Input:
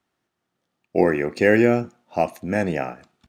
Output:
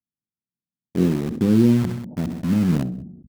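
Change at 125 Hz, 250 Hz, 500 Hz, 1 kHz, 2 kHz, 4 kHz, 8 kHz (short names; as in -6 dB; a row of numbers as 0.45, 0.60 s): +8.5 dB, +4.5 dB, -8.5 dB, -12.5 dB, -15.0 dB, +2.0 dB, n/a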